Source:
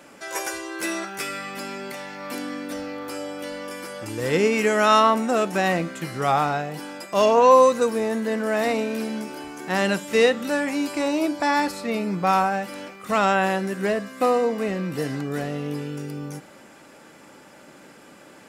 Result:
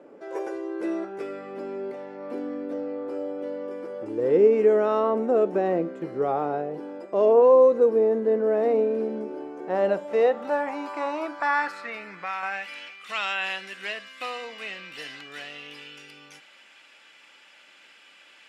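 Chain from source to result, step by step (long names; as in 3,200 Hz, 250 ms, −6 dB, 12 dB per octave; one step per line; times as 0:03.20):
in parallel at −2 dB: brickwall limiter −15 dBFS, peak gain reduction 10.5 dB
0:11.71–0:12.43: on the sum: downward compressor 3 to 1, threshold −19 dBFS, peak gain reduction 5.5 dB
band-pass filter sweep 420 Hz → 2,900 Hz, 0:09.33–0:12.99
level +1 dB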